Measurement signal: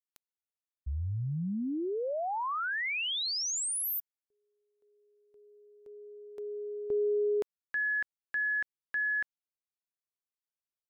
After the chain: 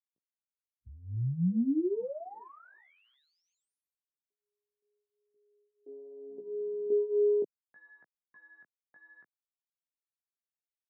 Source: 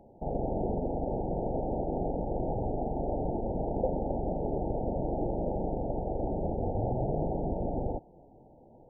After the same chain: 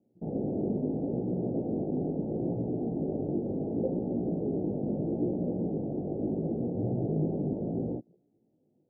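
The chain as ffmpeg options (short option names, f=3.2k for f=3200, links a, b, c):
-af "afwtdn=0.01,flanger=delay=16.5:depth=3.4:speed=0.74,asuperpass=centerf=230:order=4:qfactor=0.87,volume=8dB"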